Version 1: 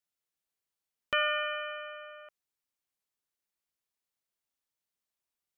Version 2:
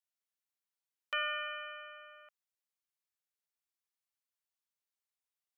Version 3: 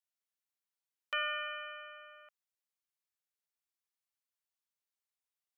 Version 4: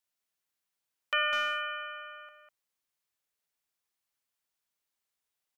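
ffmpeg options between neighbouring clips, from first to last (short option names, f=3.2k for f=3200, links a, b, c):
-af "highpass=730,volume=-5.5dB"
-af anull
-filter_complex "[0:a]asplit=2[a][b];[b]adelay=200,highpass=300,lowpass=3.4k,asoftclip=type=hard:threshold=-30dB,volume=-6dB[c];[a][c]amix=inputs=2:normalize=0,volume=6dB"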